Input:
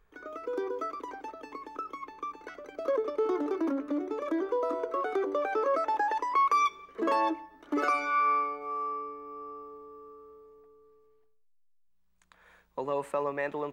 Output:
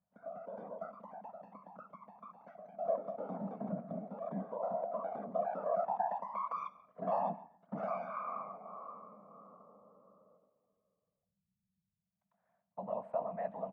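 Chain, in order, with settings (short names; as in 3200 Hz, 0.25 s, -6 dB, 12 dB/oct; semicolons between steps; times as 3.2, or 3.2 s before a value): whisperiser; gate -52 dBFS, range -8 dB; double band-pass 360 Hz, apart 1.8 oct; on a send: echo 0.136 s -20.5 dB; on the sum: gain +2.5 dB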